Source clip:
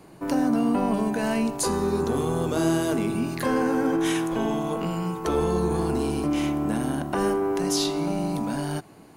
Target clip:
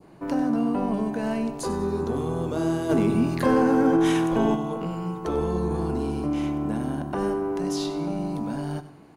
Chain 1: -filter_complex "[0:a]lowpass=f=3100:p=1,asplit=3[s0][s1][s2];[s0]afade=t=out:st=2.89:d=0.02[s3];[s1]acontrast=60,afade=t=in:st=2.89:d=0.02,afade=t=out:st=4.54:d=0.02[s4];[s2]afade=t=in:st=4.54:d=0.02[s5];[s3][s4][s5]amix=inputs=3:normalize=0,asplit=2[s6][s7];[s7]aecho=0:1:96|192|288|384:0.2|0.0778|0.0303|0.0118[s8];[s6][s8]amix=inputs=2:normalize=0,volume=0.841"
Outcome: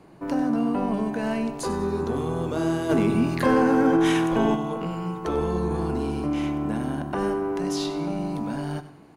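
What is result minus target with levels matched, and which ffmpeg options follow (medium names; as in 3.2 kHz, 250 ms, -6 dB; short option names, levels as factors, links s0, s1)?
2 kHz band +3.0 dB
-filter_complex "[0:a]lowpass=f=3100:p=1,adynamicequalizer=threshold=0.00631:dfrequency=2100:dqfactor=0.73:tfrequency=2100:tqfactor=0.73:attack=5:release=100:ratio=0.417:range=2:mode=cutabove:tftype=bell,asplit=3[s0][s1][s2];[s0]afade=t=out:st=2.89:d=0.02[s3];[s1]acontrast=60,afade=t=in:st=2.89:d=0.02,afade=t=out:st=4.54:d=0.02[s4];[s2]afade=t=in:st=4.54:d=0.02[s5];[s3][s4][s5]amix=inputs=3:normalize=0,asplit=2[s6][s7];[s7]aecho=0:1:96|192|288|384:0.2|0.0778|0.0303|0.0118[s8];[s6][s8]amix=inputs=2:normalize=0,volume=0.841"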